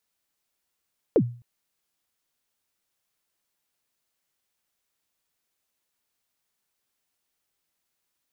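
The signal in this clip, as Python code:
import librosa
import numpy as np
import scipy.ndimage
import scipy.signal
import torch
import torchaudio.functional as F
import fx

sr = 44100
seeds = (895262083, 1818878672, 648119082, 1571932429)

y = fx.drum_kick(sr, seeds[0], length_s=0.26, level_db=-12, start_hz=540.0, end_hz=120.0, sweep_ms=65.0, decay_s=0.4, click=False)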